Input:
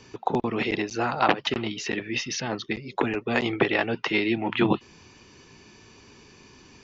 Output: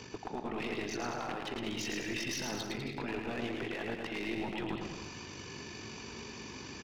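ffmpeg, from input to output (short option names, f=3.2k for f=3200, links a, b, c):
-af "highpass=58,areverse,acompressor=threshold=-32dB:ratio=6,areverse,alimiter=level_in=8.5dB:limit=-24dB:level=0:latency=1:release=109,volume=-8.5dB,tremolo=f=48:d=0.571,aeval=exprs='clip(val(0),-1,0.00668)':c=same,aecho=1:1:110|198|268.4|324.7|369.8:0.631|0.398|0.251|0.158|0.1,volume=6.5dB"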